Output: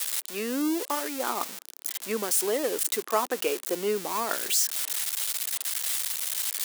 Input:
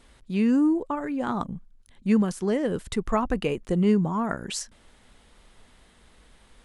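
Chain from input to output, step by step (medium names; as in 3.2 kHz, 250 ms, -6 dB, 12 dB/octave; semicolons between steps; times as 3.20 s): zero-crossing glitches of -19 dBFS; high-pass 350 Hz 24 dB/octave; reverse; upward compressor, threshold -34 dBFS; reverse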